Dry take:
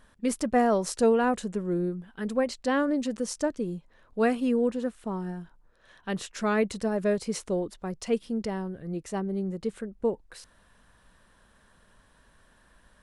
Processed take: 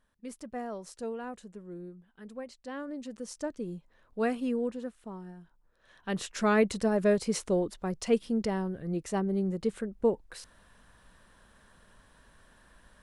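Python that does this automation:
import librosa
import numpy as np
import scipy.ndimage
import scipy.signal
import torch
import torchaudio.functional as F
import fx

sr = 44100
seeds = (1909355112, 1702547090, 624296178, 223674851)

y = fx.gain(x, sr, db=fx.line((2.64, -15.0), (3.72, -5.0), (4.46, -5.0), (5.35, -11.5), (6.3, 1.0)))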